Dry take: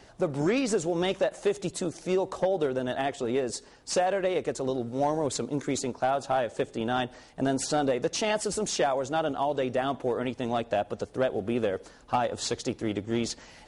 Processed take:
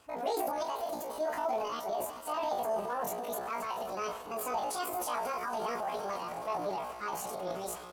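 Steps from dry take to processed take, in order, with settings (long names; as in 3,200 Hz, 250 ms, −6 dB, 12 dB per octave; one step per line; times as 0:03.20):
harmonic generator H 6 −39 dB, 8 −40 dB, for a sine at −16 dBFS
time stretch by phase vocoder 0.58×
feedback delay with all-pass diffusion 469 ms, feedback 73%, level −15 dB
dynamic equaliser 400 Hz, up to +7 dB, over −44 dBFS, Q 2
transient designer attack −3 dB, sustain +7 dB
double-tracking delay 28 ms −6 dB
pitch shifter +9 semitones
level −7.5 dB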